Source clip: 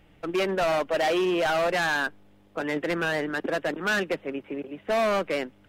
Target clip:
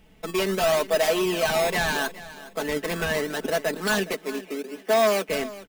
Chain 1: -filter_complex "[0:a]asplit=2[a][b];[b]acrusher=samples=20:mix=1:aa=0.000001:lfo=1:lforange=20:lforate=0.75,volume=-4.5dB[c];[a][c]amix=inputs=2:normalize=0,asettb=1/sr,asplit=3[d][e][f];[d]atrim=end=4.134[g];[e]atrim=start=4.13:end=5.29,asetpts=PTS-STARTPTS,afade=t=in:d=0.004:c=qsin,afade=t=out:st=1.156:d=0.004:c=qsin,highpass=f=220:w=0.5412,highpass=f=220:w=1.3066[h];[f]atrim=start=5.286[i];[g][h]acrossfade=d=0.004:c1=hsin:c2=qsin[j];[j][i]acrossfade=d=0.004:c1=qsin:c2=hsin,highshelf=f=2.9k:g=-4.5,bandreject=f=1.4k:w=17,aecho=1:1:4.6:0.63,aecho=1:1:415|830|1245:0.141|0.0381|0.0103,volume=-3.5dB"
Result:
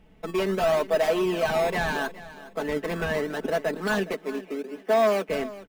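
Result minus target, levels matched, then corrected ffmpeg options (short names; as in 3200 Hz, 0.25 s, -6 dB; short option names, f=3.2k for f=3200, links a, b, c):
8000 Hz band -8.5 dB
-filter_complex "[0:a]asplit=2[a][b];[b]acrusher=samples=20:mix=1:aa=0.000001:lfo=1:lforange=20:lforate=0.75,volume=-4.5dB[c];[a][c]amix=inputs=2:normalize=0,asettb=1/sr,asplit=3[d][e][f];[d]atrim=end=4.134[g];[e]atrim=start=4.13:end=5.29,asetpts=PTS-STARTPTS,afade=t=in:d=0.004:c=qsin,afade=t=out:st=1.156:d=0.004:c=qsin,highpass=f=220:w=0.5412,highpass=f=220:w=1.3066[h];[f]atrim=start=5.286[i];[g][h]acrossfade=d=0.004:c1=hsin:c2=qsin[j];[j][i]acrossfade=d=0.004:c1=qsin:c2=hsin,highshelf=f=2.9k:g=7,bandreject=f=1.4k:w=17,aecho=1:1:4.6:0.63,aecho=1:1:415|830|1245:0.141|0.0381|0.0103,volume=-3.5dB"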